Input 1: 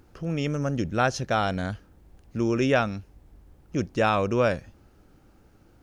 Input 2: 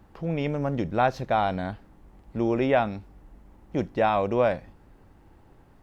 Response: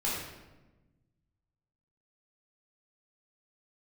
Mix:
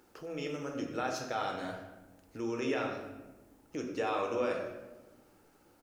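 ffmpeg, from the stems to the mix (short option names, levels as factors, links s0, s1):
-filter_complex "[0:a]highpass=250,alimiter=limit=0.211:level=0:latency=1,volume=0.596,asplit=2[s0][s1];[s1]volume=0.251[s2];[1:a]alimiter=limit=0.0891:level=0:latency=1:release=201,aexciter=amount=9.4:drive=3.1:freq=4400,adelay=6.3,volume=0.141,asplit=3[s3][s4][s5];[s4]volume=0.266[s6];[s5]apad=whole_len=256853[s7];[s0][s7]sidechaincompress=threshold=0.00141:ratio=3:attack=41:release=502[s8];[2:a]atrim=start_sample=2205[s9];[s2][s6]amix=inputs=2:normalize=0[s10];[s10][s9]afir=irnorm=-1:irlink=0[s11];[s8][s3][s11]amix=inputs=3:normalize=0,lowshelf=f=130:g=-8.5"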